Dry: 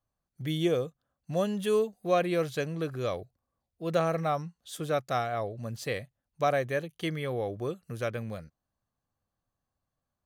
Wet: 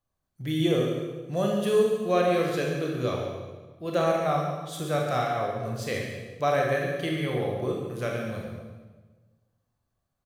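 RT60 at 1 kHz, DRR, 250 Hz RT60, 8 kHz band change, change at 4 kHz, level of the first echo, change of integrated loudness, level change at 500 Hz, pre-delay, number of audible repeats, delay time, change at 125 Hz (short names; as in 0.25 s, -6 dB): 1.3 s, -1.5 dB, 1.6 s, +3.5 dB, +4.0 dB, -9.0 dB, +4.0 dB, +4.0 dB, 22 ms, 1, 0.14 s, +4.0 dB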